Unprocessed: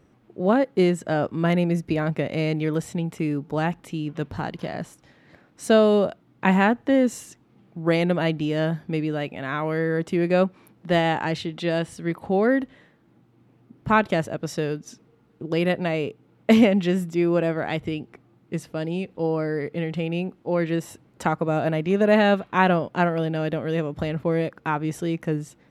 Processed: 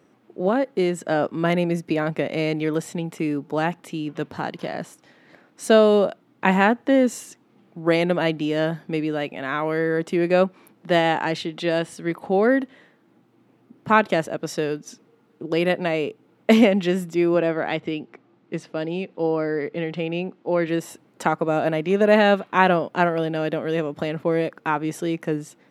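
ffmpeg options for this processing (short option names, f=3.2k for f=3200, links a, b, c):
-filter_complex "[0:a]asettb=1/sr,asplit=3[a][b][c];[a]atrim=end=0.484[d];[b]atrim=start=0.48:end=1.05,asetpts=PTS-STARTPTS,afade=t=in:d=0.004:c=qsin,afade=t=out:st=0.566:d=0.004:c=qsin,acompressor=threshold=-24dB:ratio=1.5:attack=3.2:release=140:knee=1:detection=peak[e];[c]atrim=start=1.046[f];[d][e]acrossfade=d=0.004:c1=hsin:c2=qsin[g];[g][f]acrossfade=d=0.004:c1=qsin:c2=hsin,asettb=1/sr,asplit=3[h][i][j];[h]atrim=end=17.344[k];[i]atrim=start=17.34:end=20.68,asetpts=PTS-STARTPTS,afade=t=in:d=0.004:c=qsin,afade=t=out:st=3.336:d=0.004:c=qsin,highpass=100,lowpass=5.5k[l];[j]atrim=start=20.676[m];[k][l]acrossfade=d=0.004:c1=hsin:c2=qsin[n];[n][m]acrossfade=d=0.004:c1=qsin:c2=hsin,highpass=210,volume=2.5dB"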